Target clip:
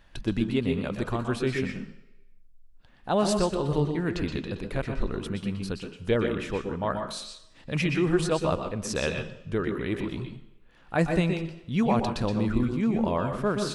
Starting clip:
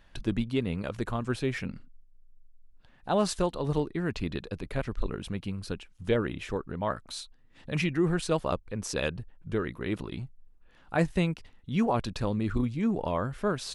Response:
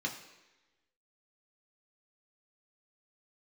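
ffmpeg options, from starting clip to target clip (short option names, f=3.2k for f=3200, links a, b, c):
-filter_complex "[0:a]asplit=2[a][b];[1:a]atrim=start_sample=2205,asetrate=52920,aresample=44100,adelay=121[c];[b][c]afir=irnorm=-1:irlink=0,volume=-6.5dB[d];[a][d]amix=inputs=2:normalize=0,volume=1.5dB"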